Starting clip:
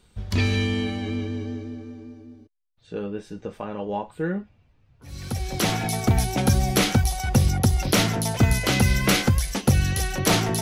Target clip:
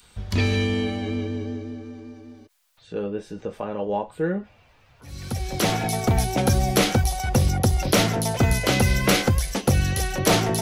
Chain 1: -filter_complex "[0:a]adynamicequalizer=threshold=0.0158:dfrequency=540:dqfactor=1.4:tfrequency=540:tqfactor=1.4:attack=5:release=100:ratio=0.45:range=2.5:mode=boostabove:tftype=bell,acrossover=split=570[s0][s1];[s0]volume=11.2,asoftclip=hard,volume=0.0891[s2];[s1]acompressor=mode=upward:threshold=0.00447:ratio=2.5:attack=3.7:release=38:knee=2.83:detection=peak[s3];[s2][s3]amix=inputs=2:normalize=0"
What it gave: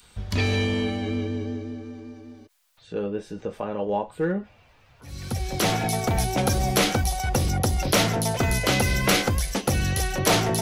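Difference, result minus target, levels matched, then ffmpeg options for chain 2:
overload inside the chain: distortion +9 dB
-filter_complex "[0:a]adynamicequalizer=threshold=0.0158:dfrequency=540:dqfactor=1.4:tfrequency=540:tqfactor=1.4:attack=5:release=100:ratio=0.45:range=2.5:mode=boostabove:tftype=bell,acrossover=split=570[s0][s1];[s0]volume=5.01,asoftclip=hard,volume=0.2[s2];[s1]acompressor=mode=upward:threshold=0.00447:ratio=2.5:attack=3.7:release=38:knee=2.83:detection=peak[s3];[s2][s3]amix=inputs=2:normalize=0"

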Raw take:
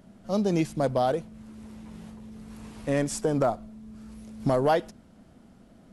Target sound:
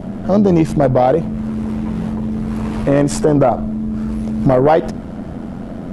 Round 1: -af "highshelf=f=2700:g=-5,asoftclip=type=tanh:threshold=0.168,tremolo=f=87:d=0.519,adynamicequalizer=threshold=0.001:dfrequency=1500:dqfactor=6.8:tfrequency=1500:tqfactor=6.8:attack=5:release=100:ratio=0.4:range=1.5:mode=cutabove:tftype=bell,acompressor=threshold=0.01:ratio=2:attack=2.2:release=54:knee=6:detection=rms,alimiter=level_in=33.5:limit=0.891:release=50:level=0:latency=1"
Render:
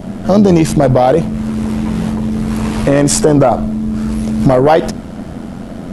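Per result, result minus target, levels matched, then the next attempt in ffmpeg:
4 kHz band +6.5 dB; compression: peak gain reduction -5.5 dB
-af "highshelf=f=2700:g=-15.5,asoftclip=type=tanh:threshold=0.168,tremolo=f=87:d=0.519,adynamicequalizer=threshold=0.001:dfrequency=1500:dqfactor=6.8:tfrequency=1500:tqfactor=6.8:attack=5:release=100:ratio=0.4:range=1.5:mode=cutabove:tftype=bell,acompressor=threshold=0.01:ratio=2:attack=2.2:release=54:knee=6:detection=rms,alimiter=level_in=33.5:limit=0.891:release=50:level=0:latency=1"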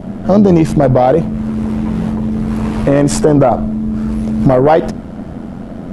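compression: peak gain reduction -5.5 dB
-af "highshelf=f=2700:g=-15.5,asoftclip=type=tanh:threshold=0.168,tremolo=f=87:d=0.519,adynamicequalizer=threshold=0.001:dfrequency=1500:dqfactor=6.8:tfrequency=1500:tqfactor=6.8:attack=5:release=100:ratio=0.4:range=1.5:mode=cutabove:tftype=bell,acompressor=threshold=0.00282:ratio=2:attack=2.2:release=54:knee=6:detection=rms,alimiter=level_in=33.5:limit=0.891:release=50:level=0:latency=1"

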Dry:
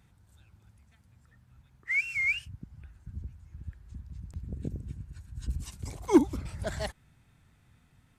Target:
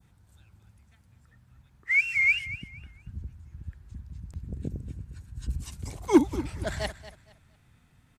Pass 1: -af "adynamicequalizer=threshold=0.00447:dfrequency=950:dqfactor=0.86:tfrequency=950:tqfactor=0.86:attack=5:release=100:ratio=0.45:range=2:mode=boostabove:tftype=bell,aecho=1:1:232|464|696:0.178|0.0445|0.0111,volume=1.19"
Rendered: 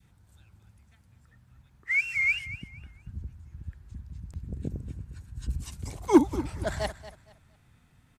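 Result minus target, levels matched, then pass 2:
1 kHz band +4.0 dB
-af "adynamicequalizer=threshold=0.00447:dfrequency=2400:dqfactor=0.86:tfrequency=2400:tqfactor=0.86:attack=5:release=100:ratio=0.45:range=2:mode=boostabove:tftype=bell,aecho=1:1:232|464|696:0.178|0.0445|0.0111,volume=1.19"

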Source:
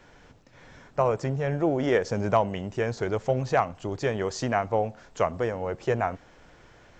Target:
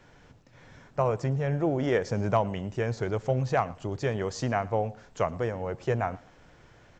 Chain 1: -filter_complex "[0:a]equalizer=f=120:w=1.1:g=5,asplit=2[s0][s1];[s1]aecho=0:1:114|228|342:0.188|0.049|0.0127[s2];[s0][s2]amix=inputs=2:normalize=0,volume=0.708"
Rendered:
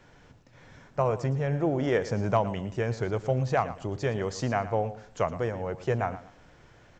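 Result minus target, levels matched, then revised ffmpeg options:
echo-to-direct +8 dB
-filter_complex "[0:a]equalizer=f=120:w=1.1:g=5,asplit=2[s0][s1];[s1]aecho=0:1:114|228:0.075|0.0195[s2];[s0][s2]amix=inputs=2:normalize=0,volume=0.708"

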